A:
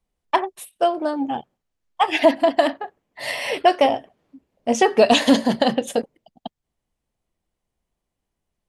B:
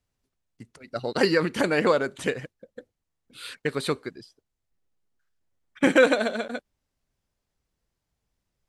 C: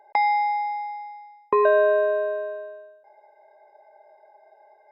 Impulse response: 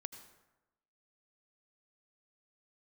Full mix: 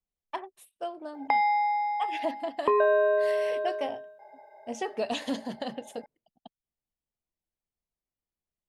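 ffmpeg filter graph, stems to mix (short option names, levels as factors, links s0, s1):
-filter_complex "[0:a]volume=0.15[s0];[2:a]adelay=1150,volume=1.33,acompressor=threshold=0.0251:ratio=1.5,volume=1[s1];[s0][s1]amix=inputs=2:normalize=0"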